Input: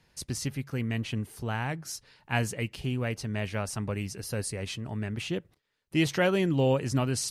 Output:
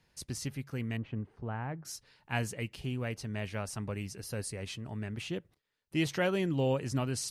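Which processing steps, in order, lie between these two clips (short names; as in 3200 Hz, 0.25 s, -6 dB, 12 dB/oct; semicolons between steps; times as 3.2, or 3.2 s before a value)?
0.97–1.85 LPF 1400 Hz 12 dB/oct; gain -5 dB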